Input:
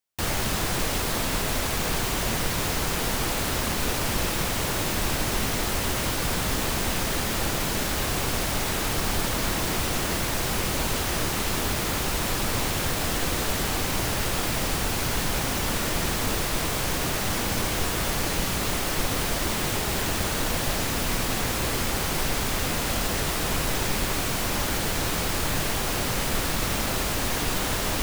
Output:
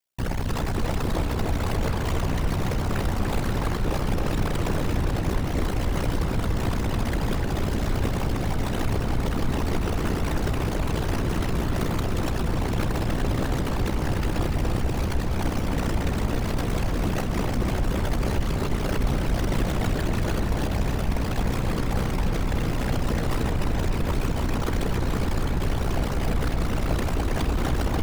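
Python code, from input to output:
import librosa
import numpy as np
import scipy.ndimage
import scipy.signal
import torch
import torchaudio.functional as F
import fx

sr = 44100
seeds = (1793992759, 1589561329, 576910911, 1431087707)

p1 = fx.envelope_sharpen(x, sr, power=2.0)
p2 = p1 * np.sin(2.0 * np.pi * 31.0 * np.arange(len(p1)) / sr)
p3 = p2 + fx.echo_filtered(p2, sr, ms=295, feedback_pct=74, hz=3300.0, wet_db=-5.0, dry=0)
y = p3 * librosa.db_to_amplitude(3.5)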